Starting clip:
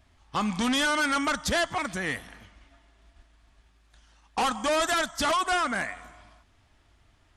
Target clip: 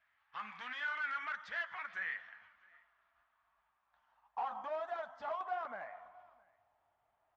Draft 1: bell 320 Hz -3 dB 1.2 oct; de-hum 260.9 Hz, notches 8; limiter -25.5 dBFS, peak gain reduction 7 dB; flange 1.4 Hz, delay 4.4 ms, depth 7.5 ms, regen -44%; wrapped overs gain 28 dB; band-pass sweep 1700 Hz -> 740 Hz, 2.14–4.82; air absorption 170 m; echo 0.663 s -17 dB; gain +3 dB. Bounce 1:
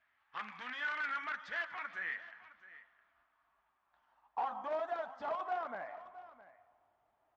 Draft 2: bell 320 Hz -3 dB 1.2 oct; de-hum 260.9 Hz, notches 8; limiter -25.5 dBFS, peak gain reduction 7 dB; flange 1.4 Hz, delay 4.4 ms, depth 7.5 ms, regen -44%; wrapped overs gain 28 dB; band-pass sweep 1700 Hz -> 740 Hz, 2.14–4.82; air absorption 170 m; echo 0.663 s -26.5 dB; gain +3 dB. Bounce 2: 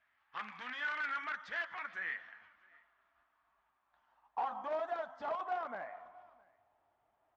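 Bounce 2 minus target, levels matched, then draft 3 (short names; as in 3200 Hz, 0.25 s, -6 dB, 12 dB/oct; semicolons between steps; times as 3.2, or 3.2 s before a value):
250 Hz band +5.0 dB
bell 320 Hz -11.5 dB 1.2 oct; de-hum 260.9 Hz, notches 8; limiter -25.5 dBFS, peak gain reduction 7.5 dB; flange 1.4 Hz, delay 4.4 ms, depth 7.5 ms, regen -44%; wrapped overs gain 28 dB; band-pass sweep 1700 Hz -> 740 Hz, 2.14–4.82; air absorption 170 m; echo 0.663 s -26.5 dB; gain +3 dB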